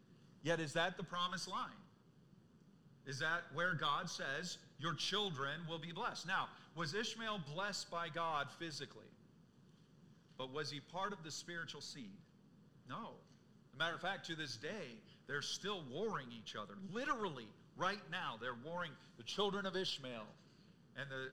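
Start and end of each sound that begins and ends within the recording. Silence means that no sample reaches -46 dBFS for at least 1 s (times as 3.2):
3.07–8.96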